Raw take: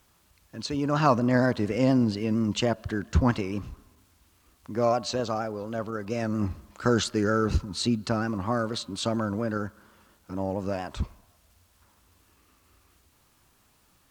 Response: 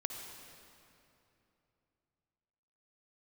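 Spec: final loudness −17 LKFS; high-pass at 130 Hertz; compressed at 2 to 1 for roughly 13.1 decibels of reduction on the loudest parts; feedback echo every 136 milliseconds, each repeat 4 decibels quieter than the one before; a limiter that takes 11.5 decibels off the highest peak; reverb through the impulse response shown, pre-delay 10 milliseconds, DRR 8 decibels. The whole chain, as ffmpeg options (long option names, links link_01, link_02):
-filter_complex "[0:a]highpass=130,acompressor=threshold=-42dB:ratio=2,alimiter=level_in=6.5dB:limit=-24dB:level=0:latency=1,volume=-6.5dB,aecho=1:1:136|272|408|544|680|816|952|1088|1224:0.631|0.398|0.25|0.158|0.0994|0.0626|0.0394|0.0249|0.0157,asplit=2[link_01][link_02];[1:a]atrim=start_sample=2205,adelay=10[link_03];[link_02][link_03]afir=irnorm=-1:irlink=0,volume=-8.5dB[link_04];[link_01][link_04]amix=inputs=2:normalize=0,volume=22dB"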